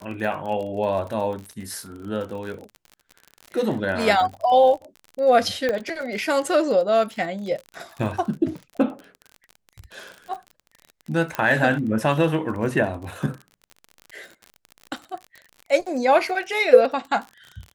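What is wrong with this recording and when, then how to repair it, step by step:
crackle 42 per s -31 dBFS
5.69 s: pop -12 dBFS
11.35 s: pop -11 dBFS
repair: de-click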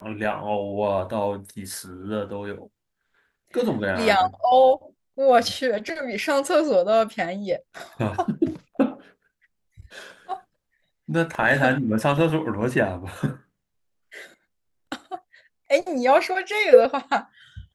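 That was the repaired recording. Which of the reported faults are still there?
11.35 s: pop

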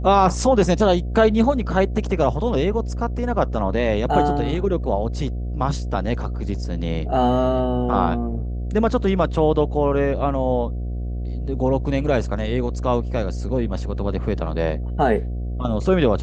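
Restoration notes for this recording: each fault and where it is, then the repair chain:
buzz 60 Hz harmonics 12 -26 dBFS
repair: de-hum 60 Hz, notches 12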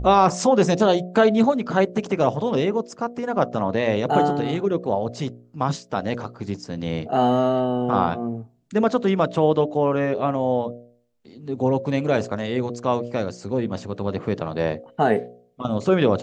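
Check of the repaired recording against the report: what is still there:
nothing left

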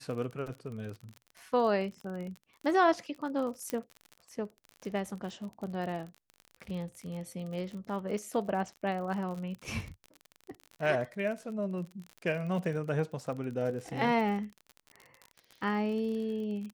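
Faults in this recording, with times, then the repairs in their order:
crackle 43 per s -38 dBFS
3.70 s: pop -18 dBFS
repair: de-click

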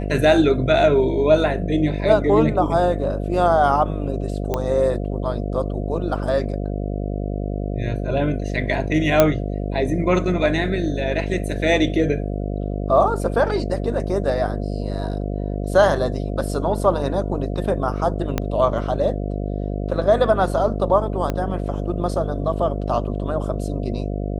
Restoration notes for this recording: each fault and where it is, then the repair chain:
buzz 50 Hz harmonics 14 -25 dBFS
4.54 s: pop -9 dBFS
9.20 s: pop 0 dBFS
18.38 s: pop -7 dBFS
21.30 s: pop -11 dBFS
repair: de-click; de-hum 50 Hz, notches 14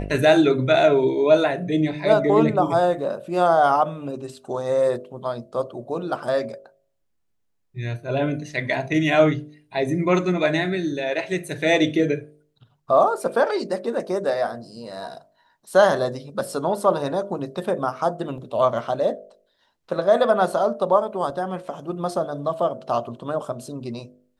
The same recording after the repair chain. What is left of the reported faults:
18.38 s: pop
21.30 s: pop

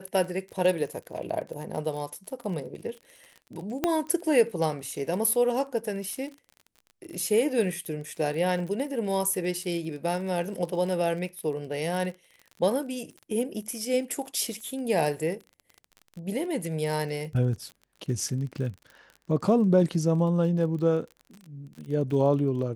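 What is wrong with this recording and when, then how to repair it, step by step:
crackle 34 per s -36 dBFS
3.84 s: pop -10 dBFS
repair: de-click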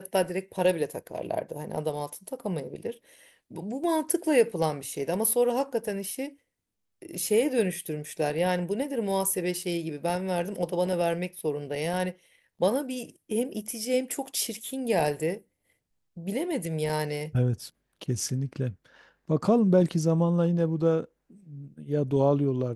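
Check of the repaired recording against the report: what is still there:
3.84 s: pop

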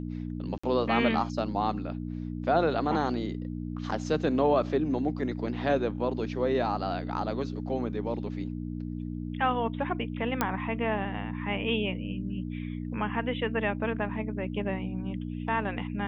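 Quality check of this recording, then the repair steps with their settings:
hum 60 Hz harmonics 5 -35 dBFS
0.58–0.64 s: dropout 55 ms
10.41 s: pop -11 dBFS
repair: de-click; de-hum 60 Hz, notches 5; interpolate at 0.58 s, 55 ms

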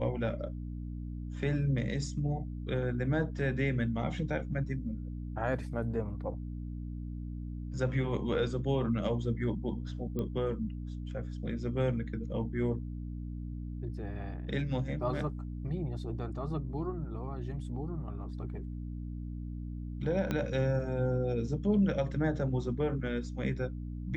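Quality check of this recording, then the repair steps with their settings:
hum 60 Hz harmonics 5 -39 dBFS
10.19 s: pop -24 dBFS
20.31 s: pop -19 dBFS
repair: de-click; de-hum 60 Hz, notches 5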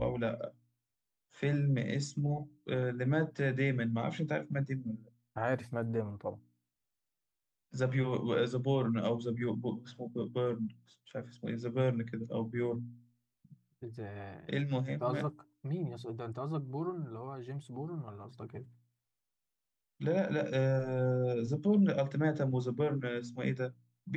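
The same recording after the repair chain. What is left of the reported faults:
20.31 s: pop

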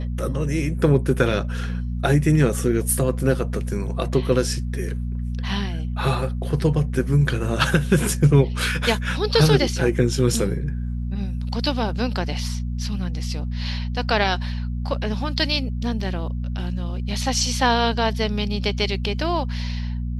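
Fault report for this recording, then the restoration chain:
hum 60 Hz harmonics 4 -26 dBFS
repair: de-hum 60 Hz, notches 4

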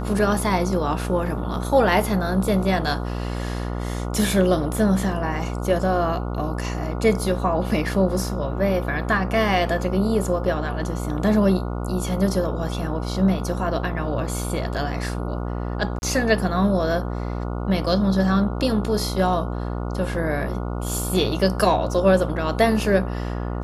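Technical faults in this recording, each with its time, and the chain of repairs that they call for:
buzz 60 Hz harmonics 24 -27 dBFS
15.99–16.02 s: dropout 31 ms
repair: de-hum 60 Hz, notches 24; interpolate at 15.99 s, 31 ms

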